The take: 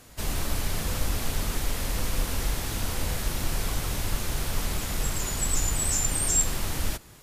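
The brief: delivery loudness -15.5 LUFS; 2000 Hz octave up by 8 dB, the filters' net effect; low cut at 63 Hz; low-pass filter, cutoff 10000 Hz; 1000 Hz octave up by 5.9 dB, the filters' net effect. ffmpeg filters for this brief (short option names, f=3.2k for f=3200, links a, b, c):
-af "highpass=63,lowpass=10k,equalizer=f=1k:t=o:g=5,equalizer=f=2k:t=o:g=8.5,volume=12.5dB"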